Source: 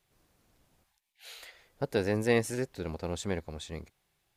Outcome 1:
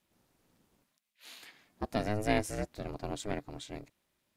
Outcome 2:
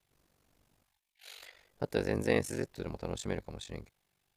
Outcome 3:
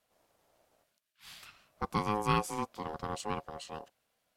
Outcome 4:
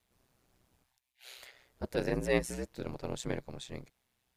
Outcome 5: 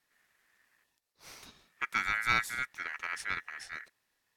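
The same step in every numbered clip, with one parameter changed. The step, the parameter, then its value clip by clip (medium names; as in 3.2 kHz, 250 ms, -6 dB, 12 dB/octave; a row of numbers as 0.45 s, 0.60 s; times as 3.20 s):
ring modulator, frequency: 210 Hz, 24 Hz, 630 Hz, 63 Hz, 1.8 kHz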